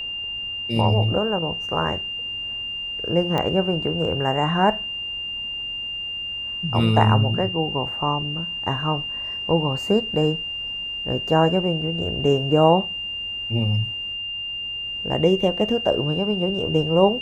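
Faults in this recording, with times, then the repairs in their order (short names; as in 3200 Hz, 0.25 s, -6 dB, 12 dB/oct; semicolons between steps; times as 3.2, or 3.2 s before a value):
tone 2800 Hz -27 dBFS
3.38 pop -11 dBFS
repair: de-click; notch 2800 Hz, Q 30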